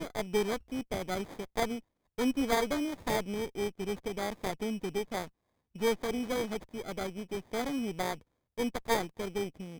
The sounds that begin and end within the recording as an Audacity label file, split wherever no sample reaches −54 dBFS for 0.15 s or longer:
2.180000	5.290000	sound
5.750000	8.220000	sound